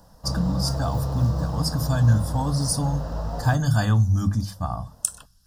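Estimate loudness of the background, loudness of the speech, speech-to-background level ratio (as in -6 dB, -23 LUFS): -29.5 LUFS, -24.5 LUFS, 5.0 dB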